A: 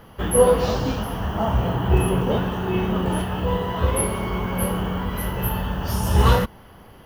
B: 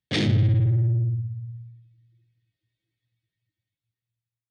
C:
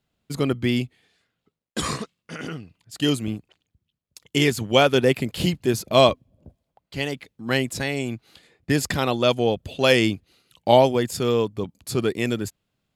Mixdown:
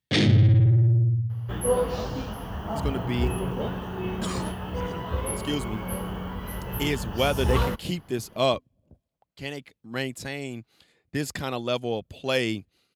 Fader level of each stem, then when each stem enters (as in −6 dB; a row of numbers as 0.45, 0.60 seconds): −8.0, +2.5, −7.5 decibels; 1.30, 0.00, 2.45 seconds